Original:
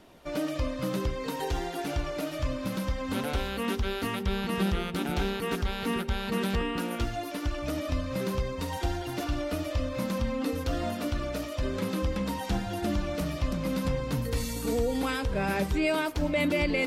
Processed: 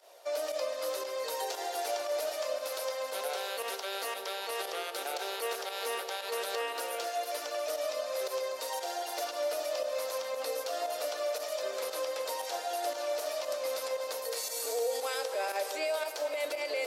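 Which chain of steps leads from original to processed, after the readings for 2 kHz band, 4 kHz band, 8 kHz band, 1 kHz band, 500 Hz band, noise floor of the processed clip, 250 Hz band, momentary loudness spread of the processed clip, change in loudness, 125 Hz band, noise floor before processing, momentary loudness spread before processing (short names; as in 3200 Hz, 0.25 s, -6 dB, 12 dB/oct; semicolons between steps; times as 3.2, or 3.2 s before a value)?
-4.5 dB, 0.0 dB, +4.5 dB, -1.0 dB, 0.0 dB, -41 dBFS, -24.5 dB, 3 LU, -3.5 dB, under -40 dB, -36 dBFS, 5 LU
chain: steep high-pass 520 Hz 36 dB/oct; band shelf 1700 Hz -8 dB 2.3 oct; limiter -30.5 dBFS, peak gain reduction 9.5 dB; pump 116 bpm, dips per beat 1, -12 dB, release 73 ms; echo with dull and thin repeats by turns 0.123 s, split 1200 Hz, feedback 79%, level -9 dB; gain +5.5 dB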